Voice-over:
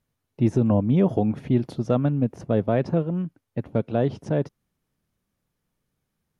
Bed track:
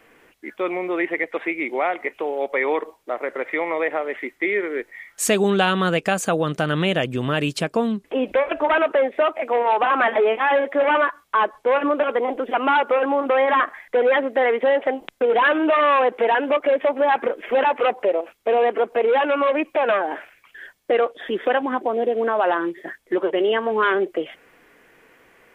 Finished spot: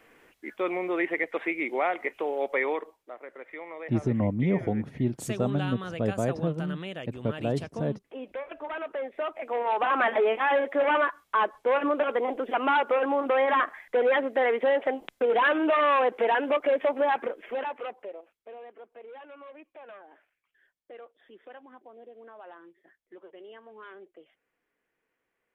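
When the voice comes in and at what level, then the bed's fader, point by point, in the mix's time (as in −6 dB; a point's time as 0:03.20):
3.50 s, −6.0 dB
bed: 0:02.58 −4.5 dB
0:03.16 −17 dB
0:08.74 −17 dB
0:09.96 −5.5 dB
0:17.01 −5.5 dB
0:18.65 −27.5 dB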